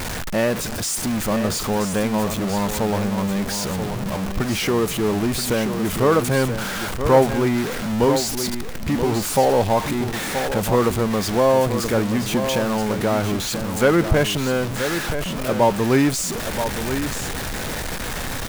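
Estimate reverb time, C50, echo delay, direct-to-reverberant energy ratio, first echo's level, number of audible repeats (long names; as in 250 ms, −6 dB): no reverb audible, no reverb audible, 978 ms, no reverb audible, −8.5 dB, 1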